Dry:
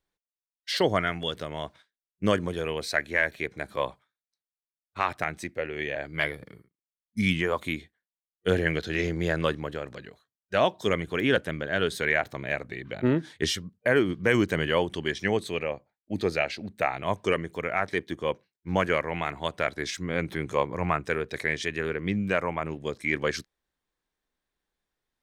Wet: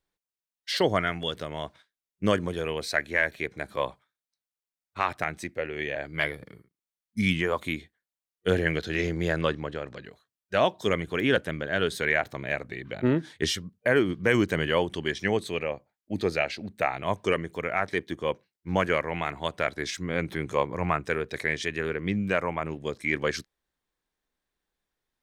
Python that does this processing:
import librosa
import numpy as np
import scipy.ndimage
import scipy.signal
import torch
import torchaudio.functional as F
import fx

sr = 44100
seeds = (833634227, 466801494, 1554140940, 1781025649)

y = fx.lowpass(x, sr, hz=6500.0, slope=12, at=(9.41, 10.05))